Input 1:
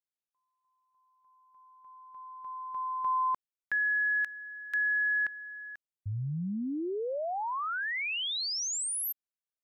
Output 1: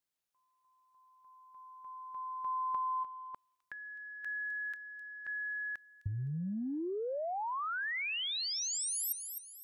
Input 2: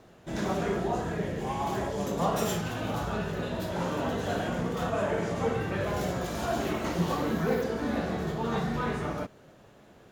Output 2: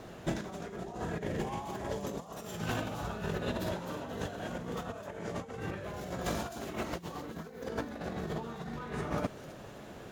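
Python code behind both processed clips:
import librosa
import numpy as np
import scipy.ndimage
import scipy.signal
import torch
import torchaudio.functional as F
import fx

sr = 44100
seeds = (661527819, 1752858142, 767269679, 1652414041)

y = fx.over_compress(x, sr, threshold_db=-36.0, ratio=-0.5)
y = fx.echo_wet_highpass(y, sr, ms=258, feedback_pct=38, hz=4500.0, wet_db=-7.5)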